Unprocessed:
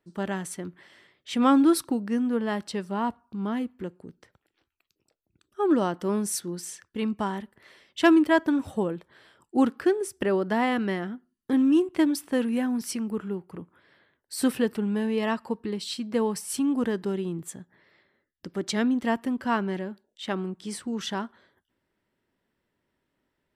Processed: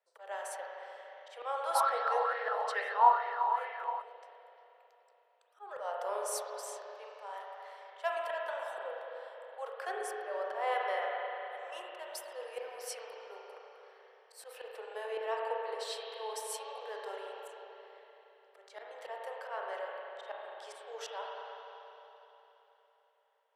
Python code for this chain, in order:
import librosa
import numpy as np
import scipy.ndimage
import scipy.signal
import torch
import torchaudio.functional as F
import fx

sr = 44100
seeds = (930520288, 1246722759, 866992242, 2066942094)

y = scipy.signal.sosfilt(scipy.signal.butter(16, 450.0, 'highpass', fs=sr, output='sos'), x)
y = fx.peak_eq(y, sr, hz=660.0, db=7.0, octaves=1.3)
y = fx.auto_swell(y, sr, attack_ms=221.0)
y = fx.rev_spring(y, sr, rt60_s=3.6, pass_ms=(33, 43), chirp_ms=75, drr_db=-2.5)
y = fx.bell_lfo(y, sr, hz=2.3, low_hz=890.0, high_hz=2100.0, db=18, at=(1.75, 4.02))
y = F.gain(torch.from_numpy(y), -8.5).numpy()